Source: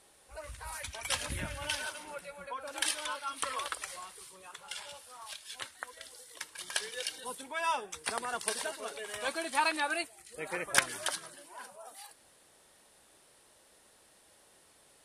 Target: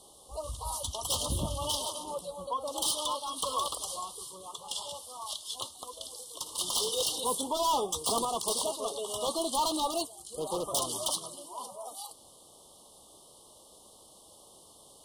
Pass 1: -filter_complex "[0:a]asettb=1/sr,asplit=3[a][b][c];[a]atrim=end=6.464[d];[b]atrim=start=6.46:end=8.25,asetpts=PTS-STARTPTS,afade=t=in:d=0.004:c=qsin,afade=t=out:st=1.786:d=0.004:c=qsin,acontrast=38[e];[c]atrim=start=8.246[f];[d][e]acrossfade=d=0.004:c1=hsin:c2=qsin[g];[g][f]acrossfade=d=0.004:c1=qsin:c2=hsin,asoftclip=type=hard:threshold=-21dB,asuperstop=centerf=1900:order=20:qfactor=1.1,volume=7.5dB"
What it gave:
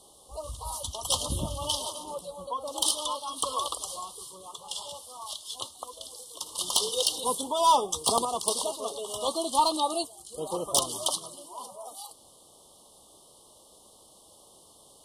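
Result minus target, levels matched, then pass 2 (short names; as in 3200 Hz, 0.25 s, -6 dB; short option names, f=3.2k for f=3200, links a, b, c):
hard clip: distortion -9 dB
-filter_complex "[0:a]asettb=1/sr,asplit=3[a][b][c];[a]atrim=end=6.464[d];[b]atrim=start=6.46:end=8.25,asetpts=PTS-STARTPTS,afade=t=in:d=0.004:c=qsin,afade=t=out:st=1.786:d=0.004:c=qsin,acontrast=38[e];[c]atrim=start=8.246[f];[d][e]acrossfade=d=0.004:c1=hsin:c2=qsin[g];[g][f]acrossfade=d=0.004:c1=qsin:c2=hsin,asoftclip=type=hard:threshold=-32dB,asuperstop=centerf=1900:order=20:qfactor=1.1,volume=7.5dB"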